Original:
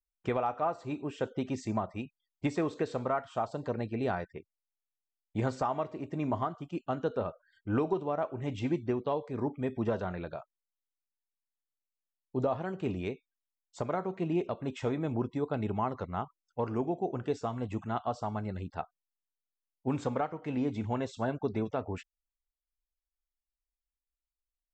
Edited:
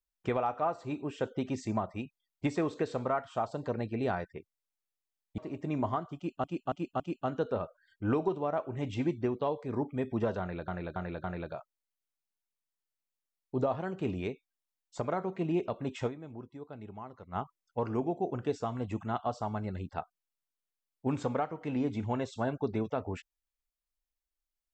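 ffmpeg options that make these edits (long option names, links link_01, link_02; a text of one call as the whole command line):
ffmpeg -i in.wav -filter_complex "[0:a]asplit=10[link_01][link_02][link_03][link_04][link_05][link_06][link_07][link_08][link_09][link_10];[link_01]atrim=end=5.382[link_11];[link_02]atrim=start=5.868:end=6.932[link_12];[link_03]atrim=start=6.648:end=6.932[link_13];[link_04]atrim=start=6.648:end=6.932[link_14];[link_05]atrim=start=6.648:end=10.332[link_15];[link_06]atrim=start=10.048:end=10.332[link_16];[link_07]atrim=start=10.048:end=10.332[link_17];[link_08]atrim=start=10.048:end=15.2,asetpts=PTS-STARTPTS,afade=type=out:start_time=4.822:duration=0.33:curve=exp:silence=0.223872[link_18];[link_09]atrim=start=15.2:end=15.84,asetpts=PTS-STARTPTS,volume=-13dB[link_19];[link_10]atrim=start=15.84,asetpts=PTS-STARTPTS,afade=type=in:duration=0.33:curve=exp:silence=0.223872[link_20];[link_11][link_12]acrossfade=duration=0.004:curve1=hsin:curve2=hsin[link_21];[link_21][link_13]acrossfade=duration=0.004:curve1=hsin:curve2=hsin[link_22];[link_22][link_14]acrossfade=duration=0.004:curve1=hsin:curve2=hsin[link_23];[link_23][link_15]acrossfade=duration=0.004:curve1=hsin:curve2=hsin[link_24];[link_24][link_16]acrossfade=duration=0.004:curve1=hsin:curve2=hsin[link_25];[link_25][link_17]acrossfade=duration=0.004:curve1=hsin:curve2=hsin[link_26];[link_18][link_19][link_20]concat=n=3:v=0:a=1[link_27];[link_26][link_27]acrossfade=duration=0.004:curve1=hsin:curve2=hsin" out.wav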